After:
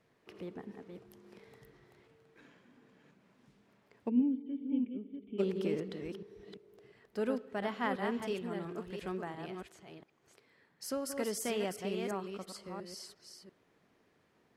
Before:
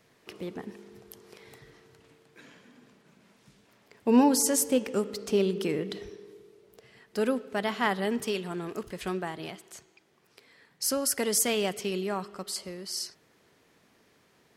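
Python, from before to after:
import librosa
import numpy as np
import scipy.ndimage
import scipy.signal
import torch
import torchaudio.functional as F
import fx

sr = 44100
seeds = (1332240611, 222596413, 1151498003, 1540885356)

y = fx.reverse_delay(x, sr, ms=346, wet_db=-5.5)
y = fx.formant_cascade(y, sr, vowel='i', at=(4.08, 5.38), fade=0.02)
y = fx.high_shelf(y, sr, hz=3300.0, db=-10.5)
y = y * 10.0 ** (-6.5 / 20.0)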